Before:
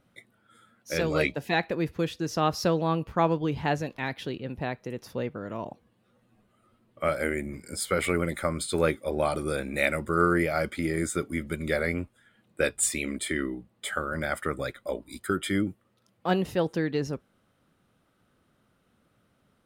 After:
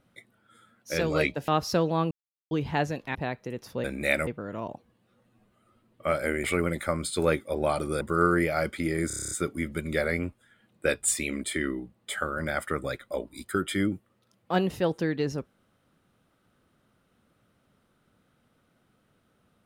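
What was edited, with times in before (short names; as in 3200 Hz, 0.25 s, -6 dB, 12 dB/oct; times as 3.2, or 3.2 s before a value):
1.48–2.39 cut
3.02–3.42 mute
4.06–4.55 cut
7.41–8 cut
9.57–10 move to 5.24
11.06 stutter 0.03 s, 9 plays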